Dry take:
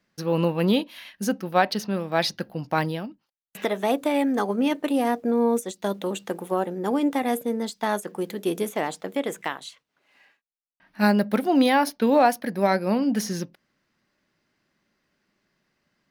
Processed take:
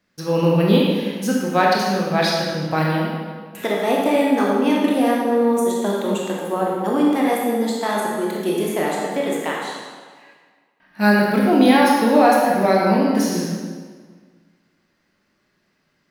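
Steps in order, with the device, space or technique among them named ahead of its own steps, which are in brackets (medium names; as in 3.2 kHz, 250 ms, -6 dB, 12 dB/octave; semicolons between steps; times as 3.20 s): stairwell (reverberation RT60 1.6 s, pre-delay 19 ms, DRR -3.5 dB); trim +1 dB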